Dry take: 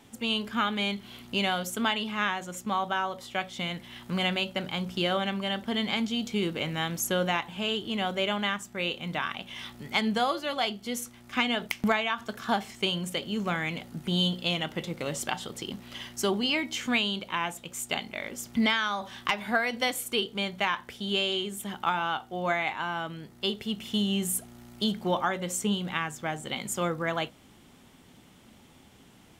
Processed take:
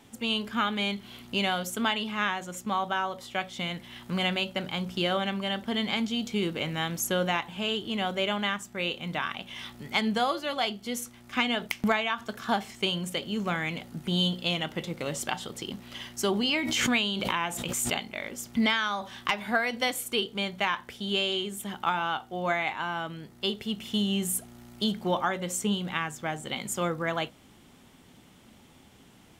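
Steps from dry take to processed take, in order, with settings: 16.30–18.03 s: swell ahead of each attack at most 23 dB/s

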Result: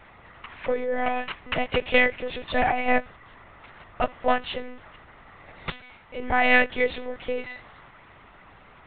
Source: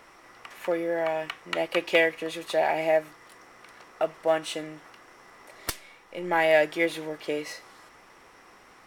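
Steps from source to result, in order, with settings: dynamic bell 210 Hz, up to -4 dB, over -36 dBFS, Q 0.74; monotone LPC vocoder at 8 kHz 250 Hz; trim +3 dB

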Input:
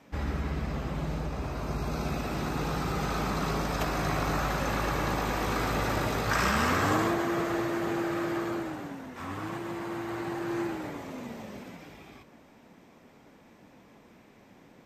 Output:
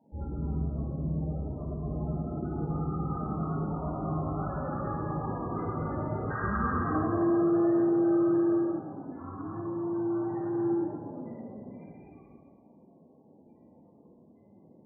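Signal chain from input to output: loudest bins only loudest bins 16; plate-style reverb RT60 1.6 s, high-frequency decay 0.75×, DRR -6 dB; trim -7 dB

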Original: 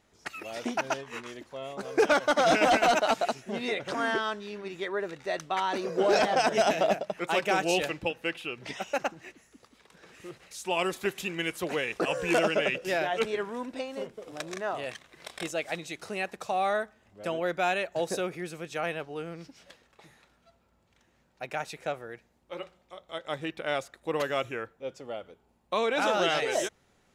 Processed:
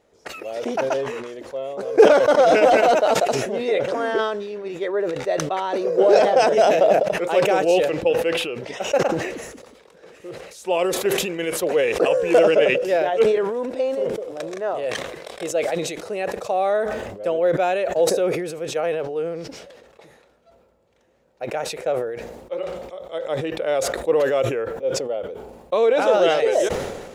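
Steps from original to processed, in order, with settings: peaking EQ 500 Hz +14.5 dB 0.99 oct; decay stretcher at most 44 dB/s; trim -1 dB

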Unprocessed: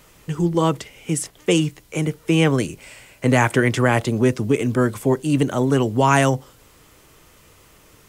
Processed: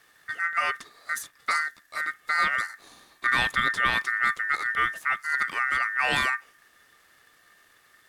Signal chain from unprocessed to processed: partial rectifier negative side -3 dB; ring modulator 1.7 kHz; small resonant body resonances 1.2/1.8/3.5 kHz, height 11 dB, ringing for 70 ms; trim -6 dB

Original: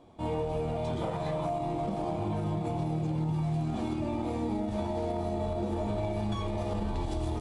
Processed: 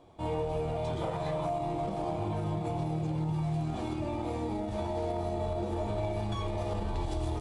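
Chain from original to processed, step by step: peaking EQ 230 Hz -8 dB 0.49 oct

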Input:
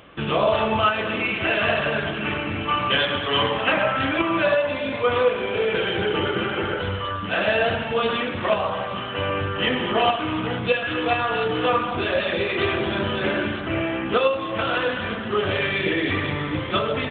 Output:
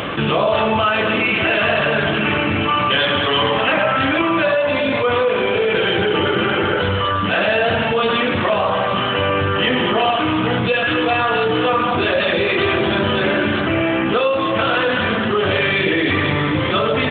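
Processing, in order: high-pass 79 Hz; level flattener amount 70%

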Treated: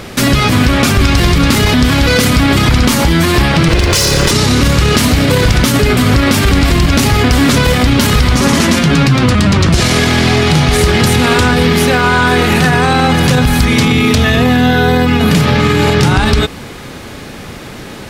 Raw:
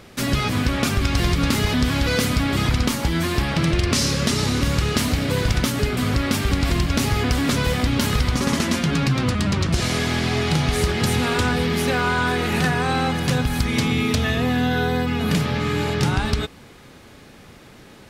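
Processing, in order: 3.68–4.31 s: comb filter that takes the minimum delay 2 ms; loudness maximiser +18 dB; trim -1 dB

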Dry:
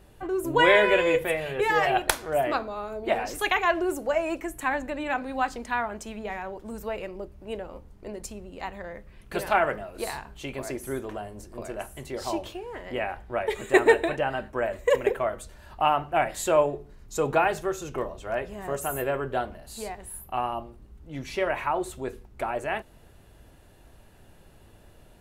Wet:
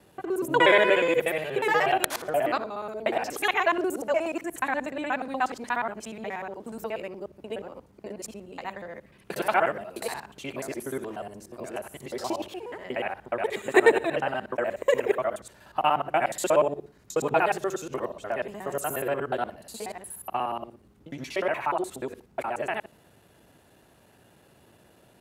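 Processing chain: time reversed locally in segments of 60 ms; high-pass 140 Hz 12 dB/octave

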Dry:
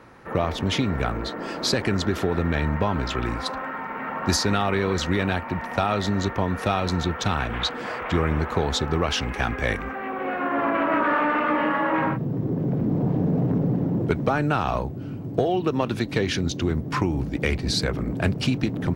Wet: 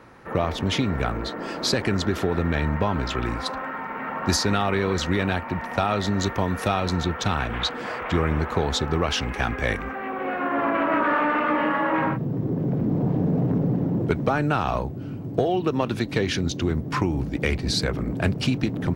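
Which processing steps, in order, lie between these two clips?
6.19–6.67 s: treble shelf 4.1 kHz -> 6.5 kHz +8 dB

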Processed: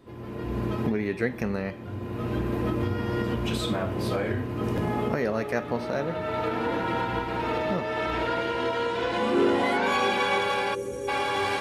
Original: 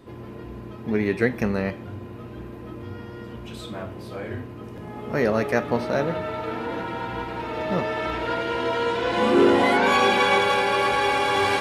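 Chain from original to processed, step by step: recorder AGC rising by 24 dB/s; time-frequency box 10.74–11.08 s, 580–5600 Hz -21 dB; trim -5.5 dB

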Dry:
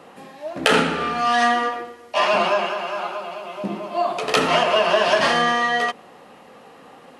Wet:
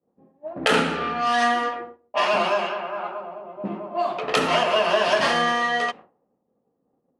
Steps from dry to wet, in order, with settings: expander -33 dBFS; level-controlled noise filter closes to 400 Hz, open at -15.5 dBFS; trim -2.5 dB

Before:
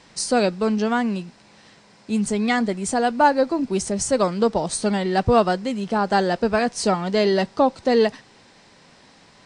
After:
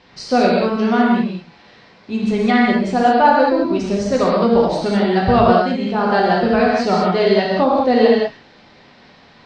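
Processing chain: low-pass 4.5 kHz 24 dB/octave; gated-style reverb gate 230 ms flat, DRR -4 dB

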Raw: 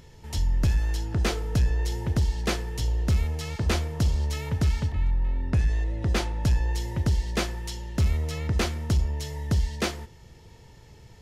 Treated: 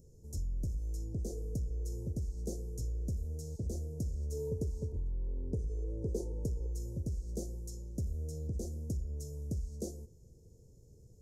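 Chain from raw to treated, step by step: elliptic band-stop 510–6400 Hz, stop band 60 dB; compression, threshold -25 dBFS, peak gain reduction 7 dB; 4.32–6.67 s: small resonant body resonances 430/940 Hz, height 12 dB, ringing for 30 ms; trim -8 dB

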